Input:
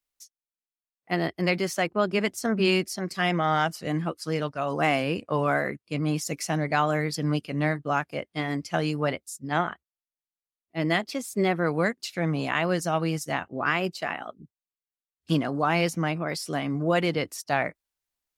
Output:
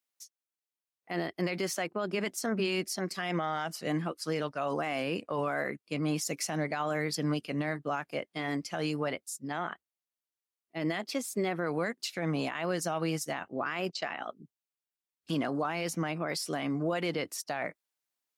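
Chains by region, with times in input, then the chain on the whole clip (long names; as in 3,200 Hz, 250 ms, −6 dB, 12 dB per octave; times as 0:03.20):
0:13.89–0:14.29: low-pass filter 6,400 Hz 24 dB per octave + high-shelf EQ 4,200 Hz +5.5 dB + noise gate −43 dBFS, range −12 dB
whole clip: Bessel high-pass filter 200 Hz, order 2; brickwall limiter −21 dBFS; level −1 dB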